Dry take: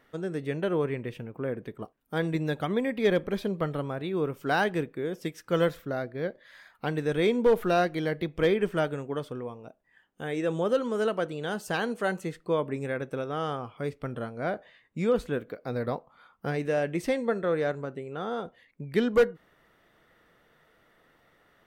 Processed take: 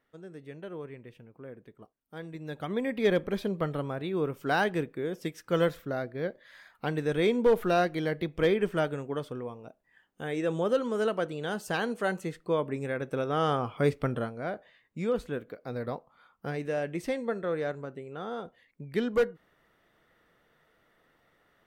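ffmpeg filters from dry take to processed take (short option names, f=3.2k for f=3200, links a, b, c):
-af "volume=7.5dB,afade=t=in:st=2.39:d=0.56:silence=0.251189,afade=t=in:st=12.97:d=0.93:silence=0.375837,afade=t=out:st=13.9:d=0.53:silence=0.266073"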